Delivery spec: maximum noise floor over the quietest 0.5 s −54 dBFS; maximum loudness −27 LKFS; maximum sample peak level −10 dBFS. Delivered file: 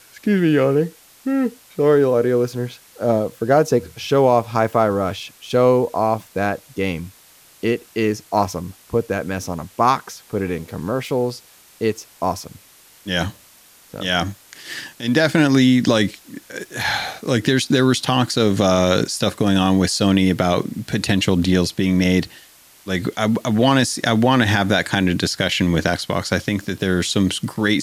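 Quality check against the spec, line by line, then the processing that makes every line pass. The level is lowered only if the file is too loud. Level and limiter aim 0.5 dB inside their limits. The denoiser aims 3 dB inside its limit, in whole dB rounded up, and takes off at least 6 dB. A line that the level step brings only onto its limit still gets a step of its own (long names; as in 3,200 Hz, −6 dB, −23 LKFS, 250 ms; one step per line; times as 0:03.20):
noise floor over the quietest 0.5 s −49 dBFS: out of spec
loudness −19.0 LKFS: out of spec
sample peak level −3.5 dBFS: out of spec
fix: level −8.5 dB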